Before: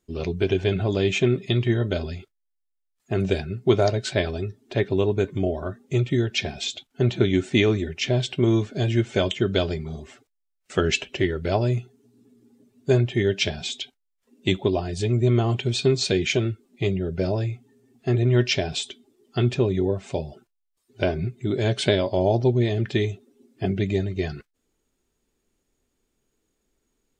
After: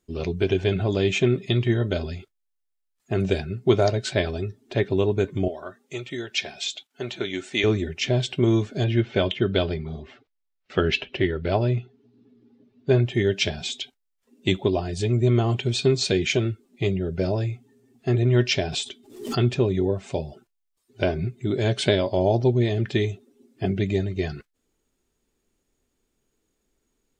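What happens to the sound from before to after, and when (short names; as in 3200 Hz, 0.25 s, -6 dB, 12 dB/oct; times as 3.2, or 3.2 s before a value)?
5.48–7.64 HPF 870 Hz 6 dB/oct
8.84–13.02 LPF 4400 Hz 24 dB/oct
18.69–19.48 backwards sustainer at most 100 dB/s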